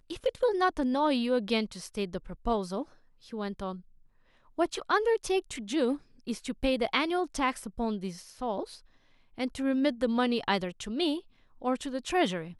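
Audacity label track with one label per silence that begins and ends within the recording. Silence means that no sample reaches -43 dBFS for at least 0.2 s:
2.830000	3.260000	silence
3.800000	4.580000	silence
5.970000	6.270000	silence
8.770000	9.380000	silence
11.200000	11.620000	silence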